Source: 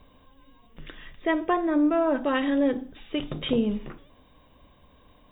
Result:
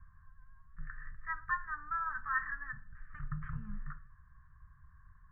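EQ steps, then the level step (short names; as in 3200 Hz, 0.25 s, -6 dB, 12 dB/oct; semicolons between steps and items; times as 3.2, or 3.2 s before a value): inverse Chebyshev band-stop 250–750 Hz, stop band 40 dB; rippled Chebyshev low-pass 1800 Hz, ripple 3 dB; bell 400 Hz -13 dB 2.2 oct; +5.0 dB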